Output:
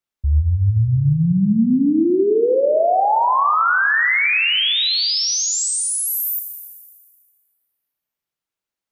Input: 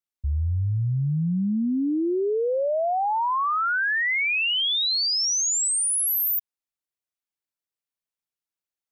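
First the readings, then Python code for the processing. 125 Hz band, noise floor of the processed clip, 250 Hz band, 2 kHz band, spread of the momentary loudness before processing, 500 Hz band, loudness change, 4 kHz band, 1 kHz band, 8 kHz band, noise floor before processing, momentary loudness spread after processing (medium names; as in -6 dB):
+8.0 dB, under -85 dBFS, +8.0 dB, +7.0 dB, 5 LU, +8.0 dB, +6.0 dB, +5.0 dB, +8.0 dB, +3.0 dB, under -85 dBFS, 5 LU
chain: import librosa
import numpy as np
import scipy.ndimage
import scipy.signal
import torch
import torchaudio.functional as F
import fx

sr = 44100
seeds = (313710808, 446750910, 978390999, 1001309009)

y = fx.high_shelf(x, sr, hz=4500.0, db=-7.0)
y = fx.rev_schroeder(y, sr, rt60_s=1.7, comb_ms=28, drr_db=5.5)
y = y * librosa.db_to_amplitude(7.0)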